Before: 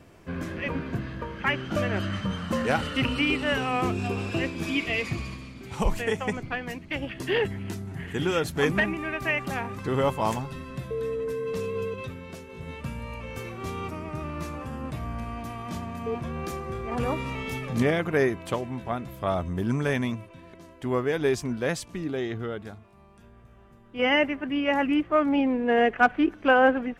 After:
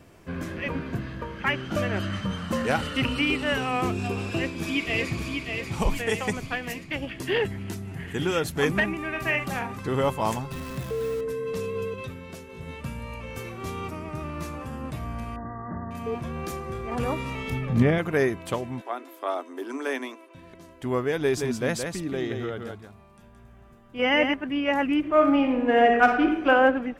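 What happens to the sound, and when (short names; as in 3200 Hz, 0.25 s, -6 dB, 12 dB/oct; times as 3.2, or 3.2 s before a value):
4.29–5.39 echo throw 0.59 s, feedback 50%, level -5 dB
6.09–6.84 high shelf 4200 Hz +7.5 dB
9.1–9.77 doubler 47 ms -7 dB
10.51–11.21 zero-crossing step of -37 dBFS
15.36–15.91 brick-wall FIR low-pass 2000 Hz
17.5–17.98 tone controls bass +7 dB, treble -11 dB
18.81–20.35 rippled Chebyshev high-pass 260 Hz, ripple 3 dB
21.2–24.34 echo 0.171 s -5.5 dB
24.99–26.49 reverb throw, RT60 0.97 s, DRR 2.5 dB
whole clip: high shelf 7400 Hz +4.5 dB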